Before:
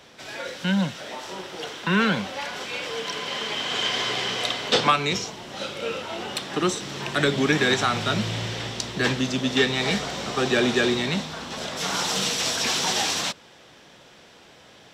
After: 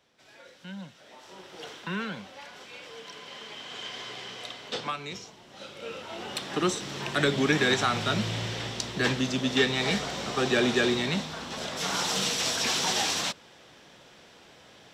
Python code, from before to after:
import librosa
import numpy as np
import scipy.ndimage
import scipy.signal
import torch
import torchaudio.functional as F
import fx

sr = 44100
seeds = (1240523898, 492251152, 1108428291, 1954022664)

y = fx.gain(x, sr, db=fx.line((0.95, -18.0), (1.71, -7.0), (2.07, -13.5), (5.48, -13.5), (6.48, -3.0)))